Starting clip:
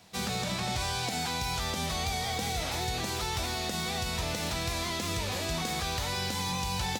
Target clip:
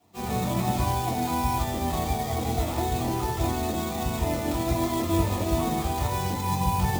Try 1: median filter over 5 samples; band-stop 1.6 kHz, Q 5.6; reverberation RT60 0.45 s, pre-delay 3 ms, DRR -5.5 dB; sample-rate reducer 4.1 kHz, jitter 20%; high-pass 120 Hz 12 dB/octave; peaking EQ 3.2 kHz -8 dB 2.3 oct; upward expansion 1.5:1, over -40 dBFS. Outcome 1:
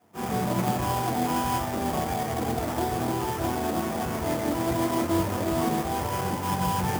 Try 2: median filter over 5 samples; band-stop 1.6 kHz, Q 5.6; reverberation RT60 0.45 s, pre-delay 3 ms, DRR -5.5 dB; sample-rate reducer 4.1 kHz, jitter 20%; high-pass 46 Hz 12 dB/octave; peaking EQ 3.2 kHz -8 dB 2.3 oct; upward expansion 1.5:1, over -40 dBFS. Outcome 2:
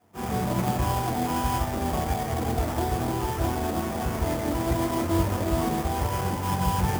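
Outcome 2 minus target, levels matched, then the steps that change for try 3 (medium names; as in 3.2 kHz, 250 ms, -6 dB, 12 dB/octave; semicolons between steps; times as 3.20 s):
sample-rate reducer: distortion +5 dB
change: sample-rate reducer 11 kHz, jitter 20%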